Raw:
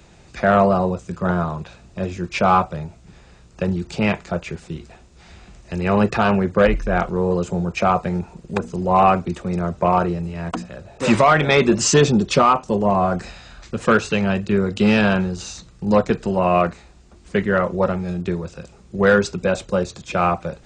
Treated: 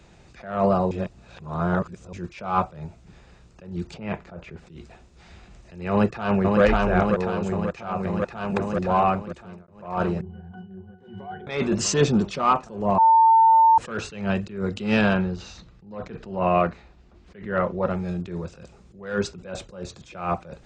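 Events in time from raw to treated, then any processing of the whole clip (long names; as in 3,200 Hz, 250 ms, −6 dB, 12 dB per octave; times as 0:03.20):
0:00.91–0:02.13: reverse
0:03.94–0:04.67: low-pass filter 1,800 Hz 6 dB per octave
0:05.90–0:06.62: delay throw 540 ms, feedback 80%, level −2.5 dB
0:07.14–0:08.22: downward compressor 5 to 1, threshold −18 dBFS
0:08.76–0:09.68: fade out
0:10.21–0:11.47: resonances in every octave F#, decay 0.24 s
0:12.98–0:13.78: beep over 899 Hz −8.5 dBFS
0:15.14–0:17.90: low-pass filter 4,200 Hz
whole clip: high-shelf EQ 7,300 Hz −7.5 dB; level that may rise only so fast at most 110 dB per second; level −3 dB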